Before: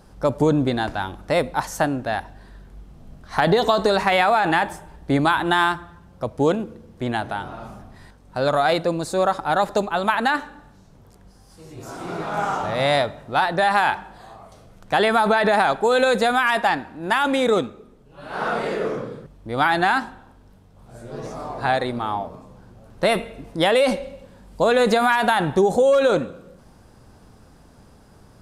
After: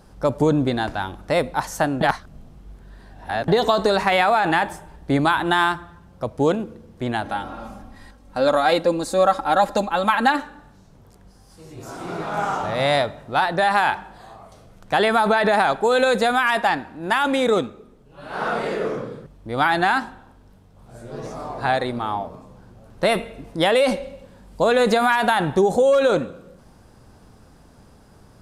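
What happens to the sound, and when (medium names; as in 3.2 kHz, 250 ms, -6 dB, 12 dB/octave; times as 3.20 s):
2.01–3.48 s: reverse
7.25–10.42 s: comb 3.7 ms, depth 64%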